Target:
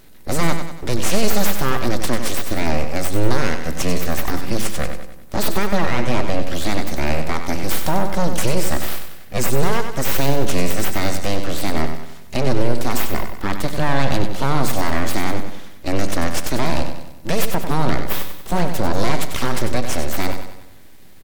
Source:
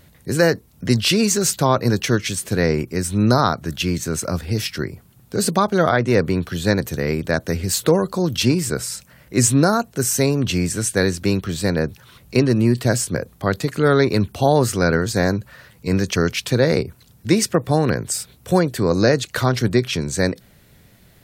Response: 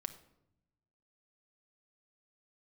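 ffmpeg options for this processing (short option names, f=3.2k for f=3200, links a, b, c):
-filter_complex "[0:a]alimiter=limit=-11.5dB:level=0:latency=1:release=67,aeval=exprs='abs(val(0))':c=same,aecho=1:1:95|190|285|380|475|570:0.398|0.191|0.0917|0.044|0.0211|0.0101,asplit=2[a][b];[1:a]atrim=start_sample=2205[c];[b][c]afir=irnorm=-1:irlink=0,volume=-1dB[d];[a][d]amix=inputs=2:normalize=0,volume=-1dB"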